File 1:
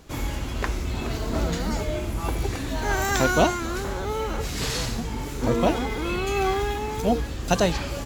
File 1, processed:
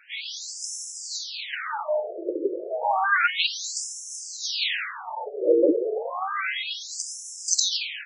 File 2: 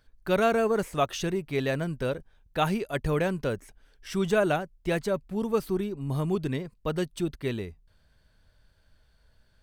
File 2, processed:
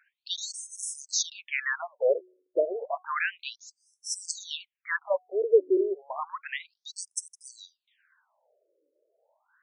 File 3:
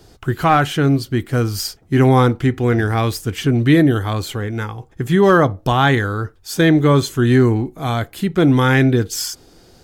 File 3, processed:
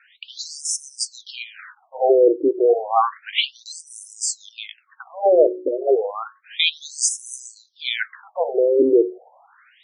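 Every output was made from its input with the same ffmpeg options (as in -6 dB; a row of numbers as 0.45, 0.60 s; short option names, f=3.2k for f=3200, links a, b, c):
-filter_complex "[0:a]highshelf=f=6.4k:g=9.5,bandreject=f=367.2:t=h:w=4,bandreject=f=734.4:t=h:w=4,bandreject=f=1.1016k:t=h:w=4,acrossover=split=280|2000[a][b][c];[b]asoftclip=type=tanh:threshold=-13.5dB[d];[a][d][c]amix=inputs=3:normalize=0,afftfilt=real='re*between(b*sr/1024,420*pow(7500/420,0.5+0.5*sin(2*PI*0.31*pts/sr))/1.41,420*pow(7500/420,0.5+0.5*sin(2*PI*0.31*pts/sr))*1.41)':imag='im*between(b*sr/1024,420*pow(7500/420,0.5+0.5*sin(2*PI*0.31*pts/sr))/1.41,420*pow(7500/420,0.5+0.5*sin(2*PI*0.31*pts/sr))*1.41)':win_size=1024:overlap=0.75,volume=8dB"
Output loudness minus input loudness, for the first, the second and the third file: -0.5, -1.5, -4.0 LU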